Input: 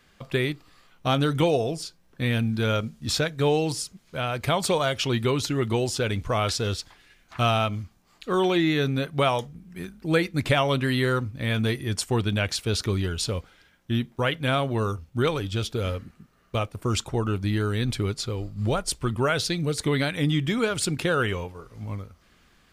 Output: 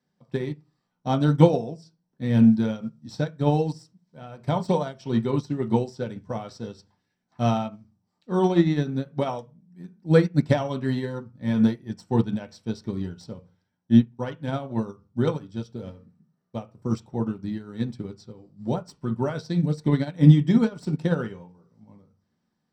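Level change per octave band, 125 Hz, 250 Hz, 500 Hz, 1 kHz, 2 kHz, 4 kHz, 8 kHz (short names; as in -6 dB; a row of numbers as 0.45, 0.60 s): +1.5 dB, +5.0 dB, -1.5 dB, -3.5 dB, -10.0 dB, -12.5 dB, under -15 dB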